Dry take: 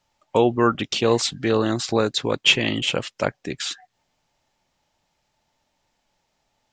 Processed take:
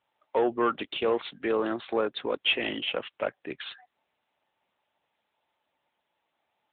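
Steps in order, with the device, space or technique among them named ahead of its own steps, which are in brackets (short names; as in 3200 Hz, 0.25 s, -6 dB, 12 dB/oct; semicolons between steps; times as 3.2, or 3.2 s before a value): 1.05–2.34 HPF 60 Hz 6 dB/oct; telephone (BPF 340–3400 Hz; soft clip -13 dBFS, distortion -16 dB; gain -3 dB; AMR-NB 10.2 kbps 8000 Hz)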